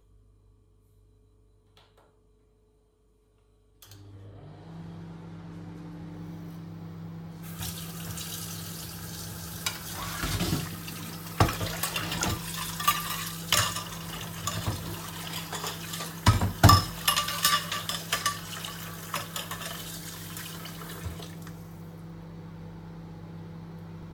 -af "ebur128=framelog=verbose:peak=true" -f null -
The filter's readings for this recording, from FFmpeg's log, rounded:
Integrated loudness:
  I:         -29.6 LUFS
  Threshold: -41.7 LUFS
Loudness range:
  LRA:        18.5 LU
  Threshold: -51.2 LUFS
  LRA low:   -43.7 LUFS
  LRA high:  -25.2 LUFS
True peak:
  Peak:       -3.8 dBFS